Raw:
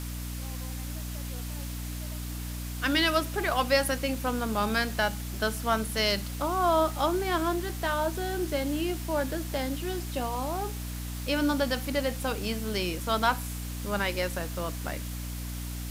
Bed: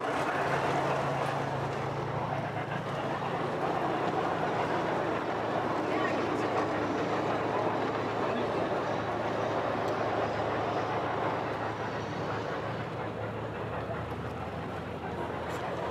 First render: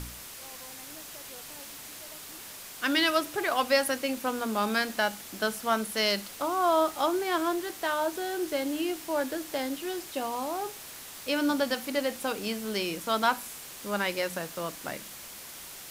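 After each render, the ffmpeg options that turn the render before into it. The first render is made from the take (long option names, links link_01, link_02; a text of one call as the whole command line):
ffmpeg -i in.wav -af "bandreject=frequency=60:width_type=h:width=4,bandreject=frequency=120:width_type=h:width=4,bandreject=frequency=180:width_type=h:width=4,bandreject=frequency=240:width_type=h:width=4,bandreject=frequency=300:width_type=h:width=4" out.wav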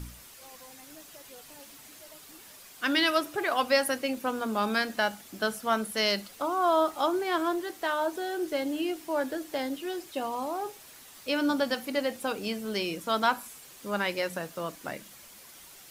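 ffmpeg -i in.wav -af "afftdn=noise_reduction=8:noise_floor=-44" out.wav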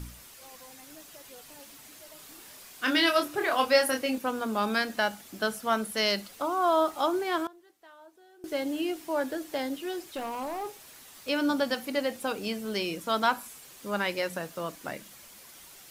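ffmpeg -i in.wav -filter_complex "[0:a]asettb=1/sr,asplit=3[link_01][link_02][link_03];[link_01]atrim=end=2.164[link_04];[link_02]atrim=start=2.16:end=4.18,asetpts=PTS-STARTPTS,afade=type=in:duration=0.004:curve=qsin,afade=type=out:start_time=2.016:duration=0.004:curve=qsin,asplit=2[link_05][link_06];[link_06]adelay=27,volume=-4.5dB[link_07];[link_05][link_07]amix=inputs=2:normalize=0,atrim=end_sample=89082[link_08];[link_03]atrim=start=4.176[link_09];[link_04][link_08]acrossfade=duration=0.004:curve1=hsin:curve2=qsin[link_10];[link_10][link_09]acrossfade=duration=0.004:curve1=qsin:curve2=hsin,asettb=1/sr,asplit=3[link_11][link_12][link_13];[link_11]atrim=end=10.044[link_14];[link_12]atrim=start=10.04:end=11.29,asetpts=PTS-STARTPTS,afade=type=in:duration=0.004:curve=qsin,afade=type=out:start_time=1.246:duration=0.004:curve=qsin,asoftclip=type=hard:threshold=-30.5dB[link_15];[link_13]atrim=start=11.286[link_16];[link_14][link_15]acrossfade=duration=0.004:curve1=hsin:curve2=qsin[link_17];[link_17][link_16]acrossfade=duration=0.004:curve1=qsin:curve2=hsin,asplit=3[link_18][link_19][link_20];[link_18]atrim=end=7.47,asetpts=PTS-STARTPTS,afade=type=out:start_time=7.11:duration=0.36:curve=log:silence=0.0630957[link_21];[link_19]atrim=start=7.47:end=8.44,asetpts=PTS-STARTPTS,volume=-24dB[link_22];[link_20]atrim=start=8.44,asetpts=PTS-STARTPTS,afade=type=in:duration=0.36:curve=log:silence=0.0630957[link_23];[link_21][link_22][link_23]concat=n=3:v=0:a=1" out.wav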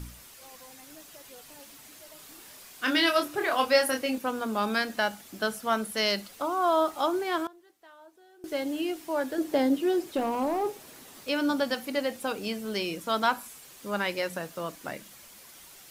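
ffmpeg -i in.wav -filter_complex "[0:a]asettb=1/sr,asplit=3[link_01][link_02][link_03];[link_01]atrim=end=9.384[link_04];[link_02]atrim=start=9.38:end=11.25,asetpts=PTS-STARTPTS,afade=type=in:duration=0.004:curve=qsin,afade=type=out:start_time=1.866:duration=0.004:curve=qsin,equalizer=frequency=290:width_type=o:width=2.8:gain=10[link_05];[link_03]atrim=start=11.246[link_06];[link_04][link_05]acrossfade=duration=0.004:curve1=hsin:curve2=qsin[link_07];[link_07][link_06]acrossfade=duration=0.004:curve1=qsin:curve2=hsin" out.wav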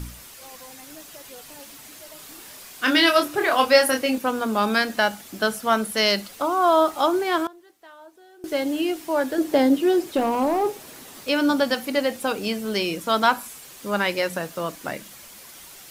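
ffmpeg -i in.wav -af "volume=6.5dB" out.wav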